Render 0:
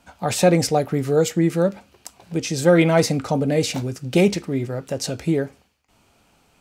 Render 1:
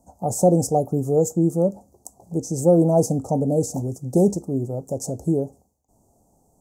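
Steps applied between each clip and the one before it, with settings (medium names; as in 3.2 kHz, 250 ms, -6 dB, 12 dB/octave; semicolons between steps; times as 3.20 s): elliptic band-stop 790–6700 Hz, stop band 60 dB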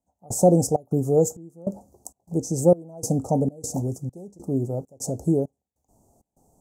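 trance gate "..xxx.xxx" 99 bpm -24 dB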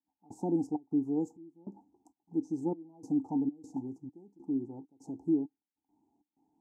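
vowel filter u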